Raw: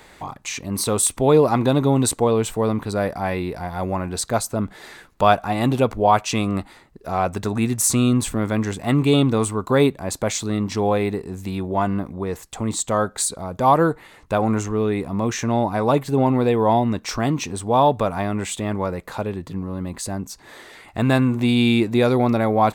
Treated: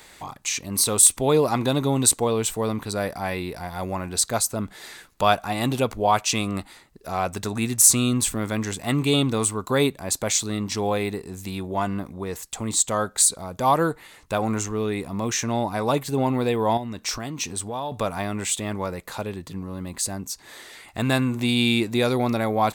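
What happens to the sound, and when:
0:16.77–0:17.92: downward compressor 3 to 1, threshold −25 dBFS
whole clip: high-shelf EQ 2,600 Hz +11 dB; level −5 dB

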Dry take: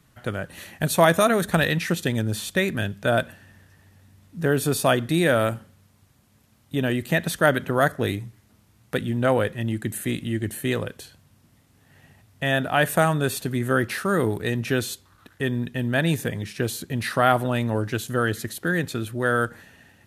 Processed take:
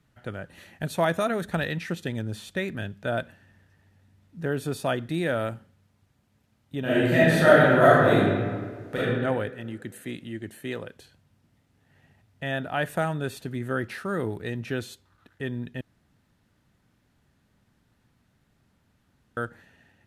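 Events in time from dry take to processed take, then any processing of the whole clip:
0:06.80–0:08.97: thrown reverb, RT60 1.7 s, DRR −11 dB
0:09.50–0:10.93: high-pass filter 200 Hz 6 dB per octave
0:15.81–0:19.37: fill with room tone
whole clip: high-shelf EQ 6,200 Hz −11 dB; notch filter 1,100 Hz, Q 13; level −6.5 dB

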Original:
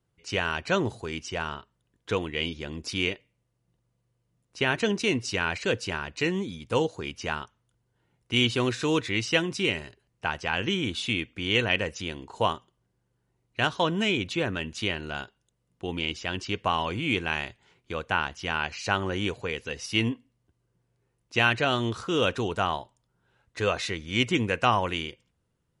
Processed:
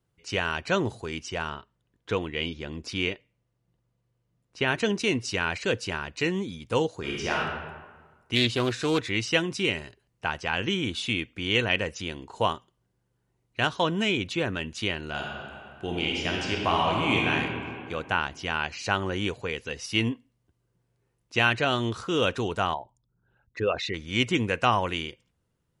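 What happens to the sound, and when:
0:01.50–0:04.68: high-shelf EQ 7,900 Hz −11 dB
0:06.99–0:07.39: thrown reverb, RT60 1.4 s, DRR −3.5 dB
0:08.35–0:09.07: highs frequency-modulated by the lows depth 0.2 ms
0:15.09–0:17.30: thrown reverb, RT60 2.4 s, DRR −1.5 dB
0:22.74–0:23.94: spectral envelope exaggerated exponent 2

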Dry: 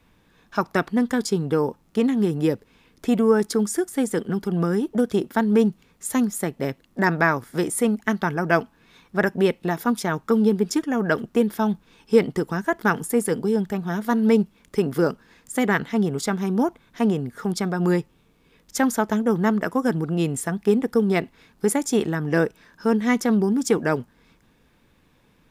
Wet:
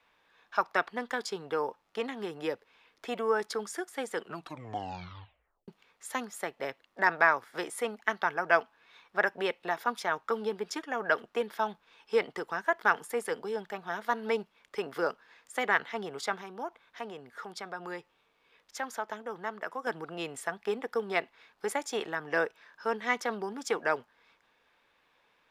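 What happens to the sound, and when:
0:04.16: tape stop 1.52 s
0:16.41–0:19.87: downward compressor 1.5 to 1, threshold −34 dBFS
whole clip: three-way crossover with the lows and the highs turned down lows −23 dB, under 510 Hz, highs −13 dB, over 4,800 Hz; level −2.5 dB

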